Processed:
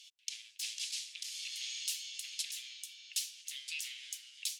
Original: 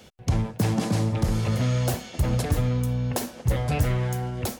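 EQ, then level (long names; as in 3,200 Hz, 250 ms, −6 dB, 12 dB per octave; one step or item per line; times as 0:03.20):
Butterworth high-pass 2,700 Hz 36 dB per octave
high-frequency loss of the air 55 metres
high-shelf EQ 4,000 Hz +5 dB
0.0 dB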